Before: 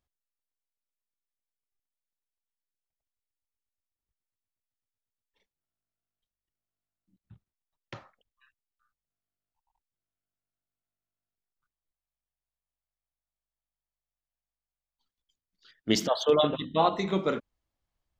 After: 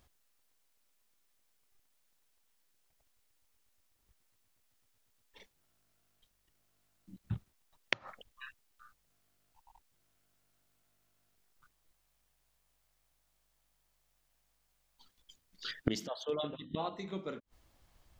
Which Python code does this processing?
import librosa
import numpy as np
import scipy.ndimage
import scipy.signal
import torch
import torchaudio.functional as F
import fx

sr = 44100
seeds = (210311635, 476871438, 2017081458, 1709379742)

y = fx.dynamic_eq(x, sr, hz=960.0, q=0.73, threshold_db=-37.0, ratio=4.0, max_db=-3)
y = fx.gate_flip(y, sr, shuts_db=-30.0, range_db=-29)
y = y * 10.0 ** (17.0 / 20.0)